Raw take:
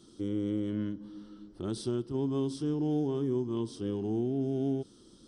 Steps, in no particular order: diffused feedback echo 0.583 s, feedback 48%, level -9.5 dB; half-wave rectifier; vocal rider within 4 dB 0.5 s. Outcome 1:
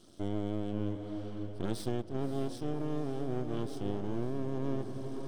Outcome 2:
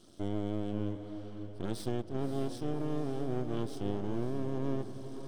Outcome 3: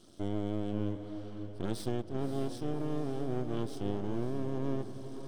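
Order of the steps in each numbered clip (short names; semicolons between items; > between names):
half-wave rectifier > diffused feedback echo > vocal rider; half-wave rectifier > vocal rider > diffused feedback echo; vocal rider > half-wave rectifier > diffused feedback echo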